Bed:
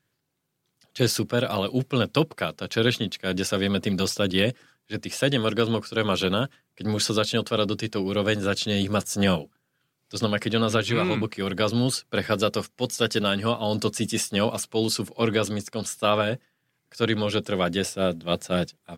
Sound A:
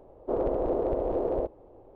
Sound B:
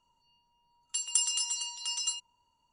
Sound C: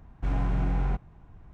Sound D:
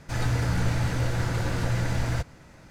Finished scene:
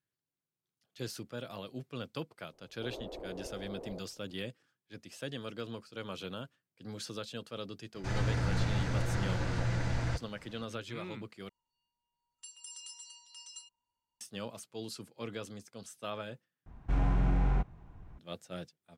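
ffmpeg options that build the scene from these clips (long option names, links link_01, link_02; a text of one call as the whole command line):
ffmpeg -i bed.wav -i cue0.wav -i cue1.wav -i cue2.wav -i cue3.wav -filter_complex "[0:a]volume=-18dB[link_01];[4:a]lowpass=6800[link_02];[2:a]alimiter=limit=-17dB:level=0:latency=1:release=95[link_03];[link_01]asplit=3[link_04][link_05][link_06];[link_04]atrim=end=11.494[link_07];[link_03]atrim=end=2.72,asetpts=PTS-STARTPTS,volume=-16.5dB[link_08];[link_05]atrim=start=14.206:end=16.664[link_09];[3:a]atrim=end=1.53,asetpts=PTS-STARTPTS,volume=-1.5dB[link_10];[link_06]atrim=start=18.186[link_11];[1:a]atrim=end=1.95,asetpts=PTS-STARTPTS,volume=-17dB,afade=type=in:duration=0.004:curve=hsin,afade=type=out:start_time=1.946:duration=0.004:curve=hsin,adelay=2530[link_12];[link_02]atrim=end=2.7,asetpts=PTS-STARTPTS,volume=-6dB,afade=type=in:duration=0.004:curve=hsin,afade=type=out:start_time=2.696:duration=0.004:curve=hsin,adelay=7950[link_13];[link_07][link_08]acrossfade=duration=0.004:curve1=hsin:curve2=hsin[link_14];[link_14][link_09]acrossfade=duration=0.004:curve1=hsin:curve2=hsin[link_15];[link_15][link_10]acrossfade=duration=0.004:curve1=hsin:curve2=hsin[link_16];[link_16][link_11]acrossfade=duration=0.004:curve1=hsin:curve2=hsin[link_17];[link_17][link_12][link_13]amix=inputs=3:normalize=0" out.wav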